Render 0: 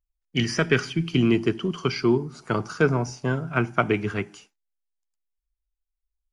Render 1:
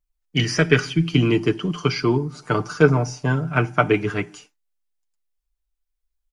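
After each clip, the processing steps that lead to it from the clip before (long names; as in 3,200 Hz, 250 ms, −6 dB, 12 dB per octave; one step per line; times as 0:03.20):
comb filter 6.7 ms, depth 59%
level +2.5 dB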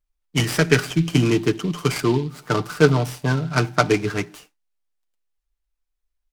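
short delay modulated by noise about 3,000 Hz, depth 0.036 ms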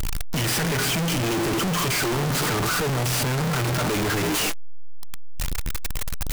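sign of each sample alone
level −1 dB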